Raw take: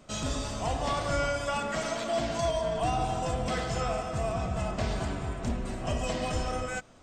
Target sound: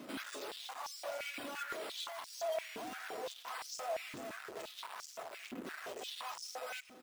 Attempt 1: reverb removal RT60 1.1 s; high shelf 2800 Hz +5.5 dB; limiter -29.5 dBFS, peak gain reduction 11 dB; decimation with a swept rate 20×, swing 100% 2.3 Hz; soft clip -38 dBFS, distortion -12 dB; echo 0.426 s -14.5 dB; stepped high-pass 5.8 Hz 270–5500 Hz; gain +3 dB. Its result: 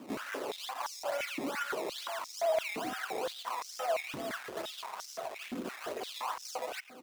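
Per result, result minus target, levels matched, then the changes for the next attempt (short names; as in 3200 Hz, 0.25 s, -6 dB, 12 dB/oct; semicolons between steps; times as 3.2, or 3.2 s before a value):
decimation with a swept rate: distortion +8 dB; soft clip: distortion -6 dB
change: decimation with a swept rate 5×, swing 100% 2.3 Hz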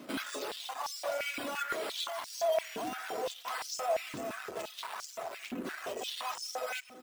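soft clip: distortion -6 dB
change: soft clip -47.5 dBFS, distortion -6 dB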